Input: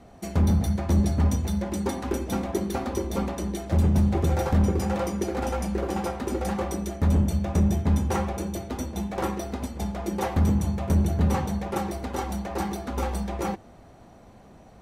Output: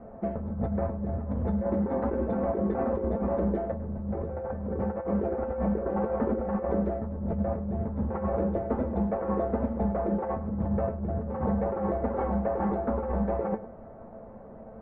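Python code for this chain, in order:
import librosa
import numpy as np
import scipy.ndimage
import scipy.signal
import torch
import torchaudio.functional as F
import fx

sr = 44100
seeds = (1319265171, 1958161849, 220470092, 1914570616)

p1 = scipy.signal.sosfilt(scipy.signal.butter(4, 1500.0, 'lowpass', fs=sr, output='sos'), x)
p2 = fx.peak_eq(p1, sr, hz=540.0, db=12.0, octaves=0.32)
p3 = fx.over_compress(p2, sr, threshold_db=-27.0, ratio=-1.0)
p4 = fx.comb_fb(p3, sr, f0_hz=220.0, decay_s=0.17, harmonics='all', damping=0.0, mix_pct=80)
p5 = p4 + fx.echo_single(p4, sr, ms=102, db=-16.0, dry=0)
y = p5 * librosa.db_to_amplitude(7.5)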